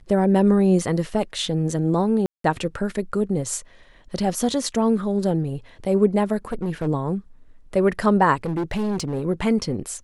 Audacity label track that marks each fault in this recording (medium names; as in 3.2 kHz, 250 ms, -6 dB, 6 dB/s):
2.260000	2.440000	dropout 183 ms
6.520000	6.880000	clipped -20.5 dBFS
8.440000	9.240000	clipped -21 dBFS